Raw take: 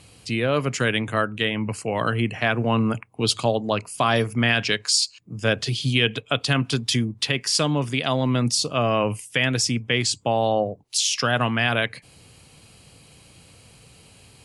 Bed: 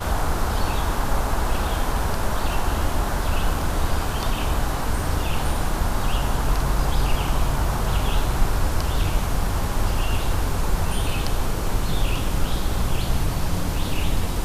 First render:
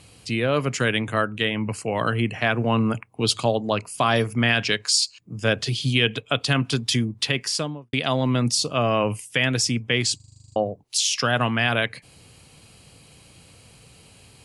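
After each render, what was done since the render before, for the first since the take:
0:07.40–0:07.93: fade out and dull
0:10.16: stutter in place 0.04 s, 10 plays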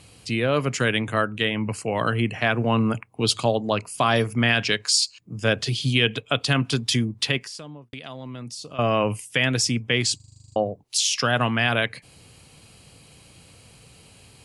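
0:07.38–0:08.79: downward compressor 3 to 1, threshold −38 dBFS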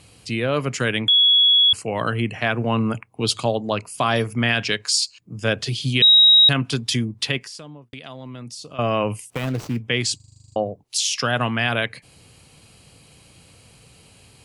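0:01.08–0:01.73: beep over 3,360 Hz −11.5 dBFS
0:06.02–0:06.49: beep over 3,810 Hz −8.5 dBFS
0:09.30–0:09.84: running median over 25 samples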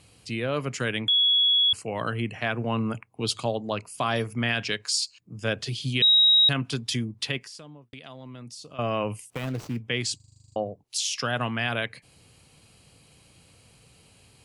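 level −6 dB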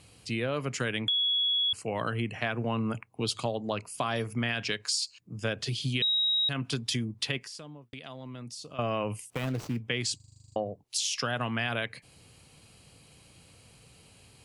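downward compressor, threshold −26 dBFS, peak gain reduction 9 dB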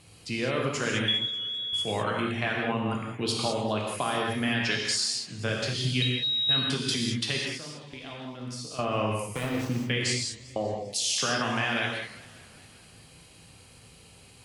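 reverb whose tail is shaped and stops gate 230 ms flat, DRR −2 dB
feedback echo with a swinging delay time 199 ms, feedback 67%, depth 201 cents, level −21.5 dB

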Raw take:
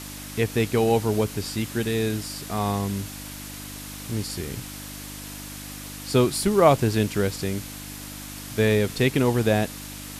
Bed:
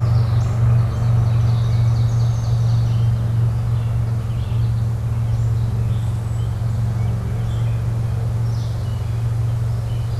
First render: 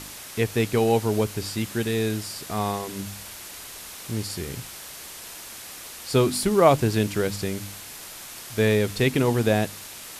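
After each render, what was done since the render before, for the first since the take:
hum removal 50 Hz, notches 6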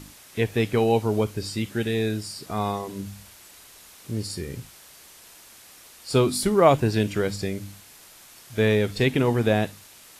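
noise reduction from a noise print 9 dB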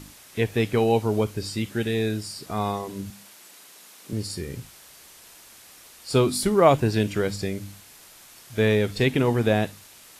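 0:03.10–0:04.13: high-pass filter 160 Hz 24 dB per octave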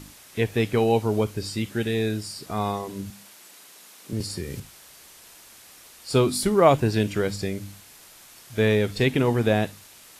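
0:04.20–0:04.60: multiband upward and downward compressor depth 70%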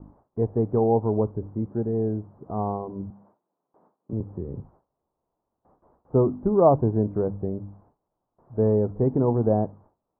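noise gate with hold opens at −37 dBFS
Butterworth low-pass 1,000 Hz 36 dB per octave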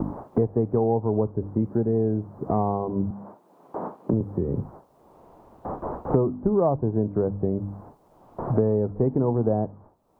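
multiband upward and downward compressor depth 100%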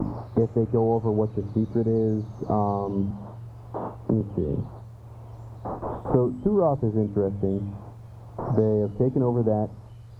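mix in bed −23 dB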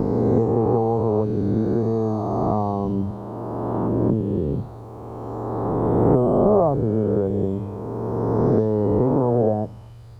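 peak hold with a rise ahead of every peak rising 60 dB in 2.99 s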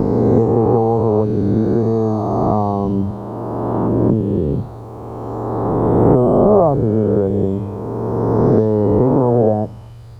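level +5.5 dB
brickwall limiter −1 dBFS, peak gain reduction 1.5 dB

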